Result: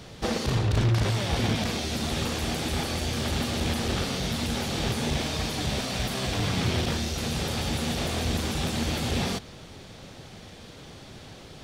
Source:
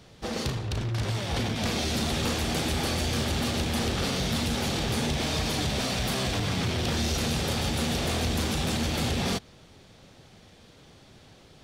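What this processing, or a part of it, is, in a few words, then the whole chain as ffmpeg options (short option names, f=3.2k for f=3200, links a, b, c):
de-esser from a sidechain: -filter_complex "[0:a]asplit=2[a][b];[b]highpass=f=4.9k:w=0.5412,highpass=f=4.9k:w=1.3066,apad=whole_len=512995[c];[a][c]sidechaincompress=threshold=-45dB:ratio=6:attack=0.82:release=20,volume=8dB"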